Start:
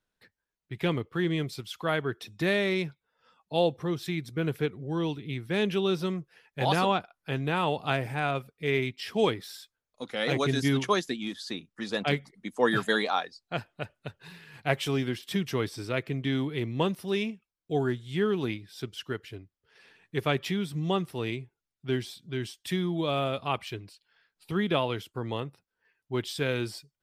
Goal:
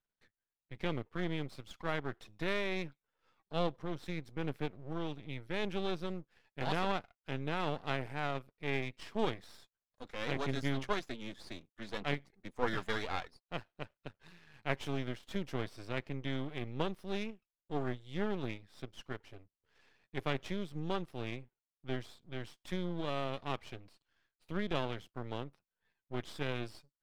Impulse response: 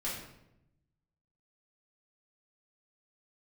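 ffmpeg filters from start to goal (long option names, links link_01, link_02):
-af "aeval=exprs='max(val(0),0)':channel_layout=same,highshelf=frequency=6700:gain=-11,volume=-5.5dB"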